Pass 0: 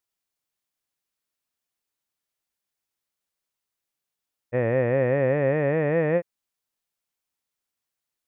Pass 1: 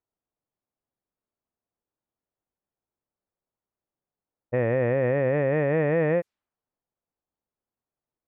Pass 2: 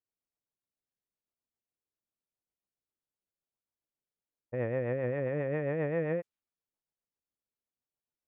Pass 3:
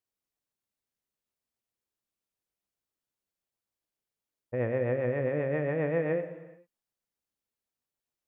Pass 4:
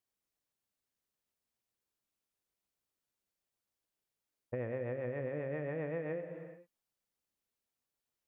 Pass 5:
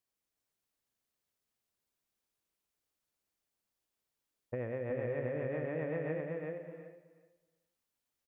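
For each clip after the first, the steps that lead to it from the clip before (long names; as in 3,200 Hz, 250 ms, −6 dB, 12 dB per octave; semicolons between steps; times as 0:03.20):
brickwall limiter −19 dBFS, peak gain reduction 7 dB; low-pass that shuts in the quiet parts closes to 800 Hz, open at −24.5 dBFS; level +4.5 dB
rotating-speaker cabinet horn 7.5 Hz; level −7 dB
reverb whose tail is shaped and stops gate 470 ms falling, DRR 9 dB; level +2.5 dB
downward compressor 5 to 1, threshold −36 dBFS, peak gain reduction 11 dB
repeating echo 372 ms, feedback 16%, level −3 dB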